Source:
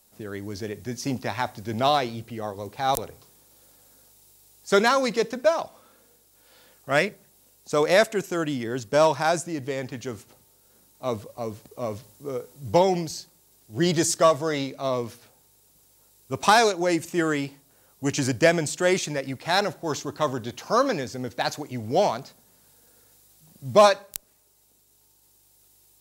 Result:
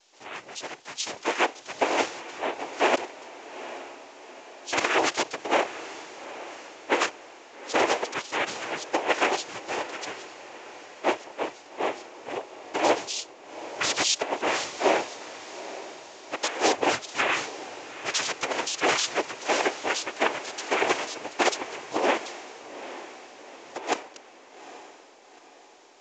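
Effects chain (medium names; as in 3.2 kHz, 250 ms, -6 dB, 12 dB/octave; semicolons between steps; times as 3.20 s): Chebyshev band-pass 610–6000 Hz, order 3; compressor with a negative ratio -24 dBFS, ratio -0.5; noise-vocoded speech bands 4; on a send: echo that smears into a reverb 835 ms, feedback 50%, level -14 dB; on the sum: trim +2.5 dB; µ-law 128 kbps 16 kHz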